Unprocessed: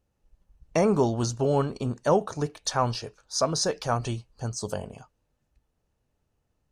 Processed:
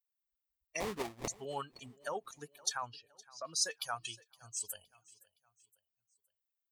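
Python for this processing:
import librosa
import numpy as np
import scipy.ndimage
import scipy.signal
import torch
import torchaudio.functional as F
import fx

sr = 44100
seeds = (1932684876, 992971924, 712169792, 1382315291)

p1 = fx.bin_expand(x, sr, power=2.0)
p2 = np.diff(p1, prepend=0.0)
p3 = fx.over_compress(p2, sr, threshold_db=-46.0, ratio=-0.5)
p4 = p2 + F.gain(torch.from_numpy(p3), 3.0).numpy()
p5 = fx.sample_hold(p4, sr, seeds[0], rate_hz=1500.0, jitter_pct=20, at=(0.8, 1.28))
p6 = fx.spacing_loss(p5, sr, db_at_10k=32, at=(2.82, 3.48))
p7 = p6 + fx.echo_feedback(p6, sr, ms=516, feedback_pct=42, wet_db=-22.5, dry=0)
y = fx.doppler_dist(p7, sr, depth_ms=0.11)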